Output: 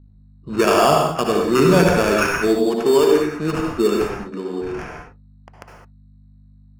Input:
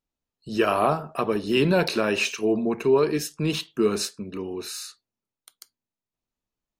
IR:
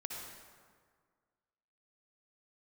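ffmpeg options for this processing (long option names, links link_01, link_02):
-filter_complex "[0:a]aeval=exprs='val(0)+0.00316*(sin(2*PI*50*n/s)+sin(2*PI*2*50*n/s)/2+sin(2*PI*3*50*n/s)/3+sin(2*PI*4*50*n/s)/4+sin(2*PI*5*50*n/s)/5)':channel_layout=same,asettb=1/sr,asplit=3[link_01][link_02][link_03];[link_01]atrim=end=2.474[link_04];[link_02]atrim=start=2.47:end=4.79,asetpts=PTS-STARTPTS,afade=type=in:duration=0.004:curve=qsin,afade=type=out:start_time=2.316:duration=0.004:curve=qsin,highpass=220,lowpass=4800[link_05];[link_03]atrim=start=4.786[link_06];[link_04][link_05]acrossfade=duration=0.004:curve1=hsin:curve2=qsin[link_07];[link_07][link_06]acrossfade=duration=0.004:curve1=qsin:curve2=hsin,acrusher=samples=11:mix=1:aa=0.000001,adynamicsmooth=sensitivity=5:basefreq=2100,equalizer=frequency=3500:width_type=o:width=0.28:gain=-6[link_08];[1:a]atrim=start_sample=2205,afade=type=out:start_time=0.27:duration=0.01,atrim=end_sample=12348[link_09];[link_08][link_09]afir=irnorm=-1:irlink=0,volume=8.5dB"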